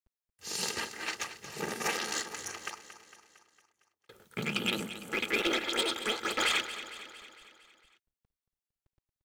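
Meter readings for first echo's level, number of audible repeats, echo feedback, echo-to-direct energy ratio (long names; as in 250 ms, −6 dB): −12.5 dB, 5, 57%, −11.0 dB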